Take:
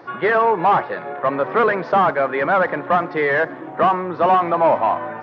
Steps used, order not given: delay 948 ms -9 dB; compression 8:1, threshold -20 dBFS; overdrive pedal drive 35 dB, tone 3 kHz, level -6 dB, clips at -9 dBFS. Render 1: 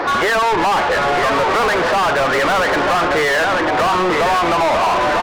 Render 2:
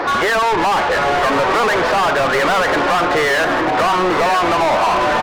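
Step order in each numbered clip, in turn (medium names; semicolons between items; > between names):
compression > delay > overdrive pedal; compression > overdrive pedal > delay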